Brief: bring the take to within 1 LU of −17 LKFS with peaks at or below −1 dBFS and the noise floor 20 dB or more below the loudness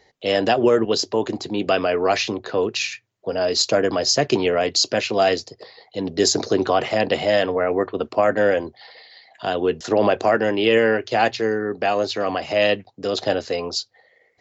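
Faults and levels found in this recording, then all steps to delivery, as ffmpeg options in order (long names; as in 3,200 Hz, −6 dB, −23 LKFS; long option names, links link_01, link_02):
integrated loudness −20.5 LKFS; sample peak −6.0 dBFS; target loudness −17.0 LKFS
→ -af "volume=3.5dB"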